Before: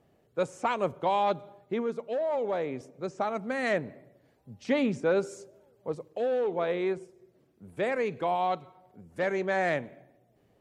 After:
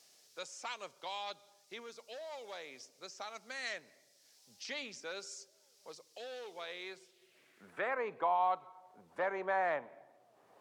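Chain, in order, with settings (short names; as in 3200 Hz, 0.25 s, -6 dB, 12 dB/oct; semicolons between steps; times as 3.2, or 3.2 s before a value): added noise blue -68 dBFS; band-pass sweep 5200 Hz -> 1000 Hz, 6.85–8.02; three-band squash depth 40%; gain +6.5 dB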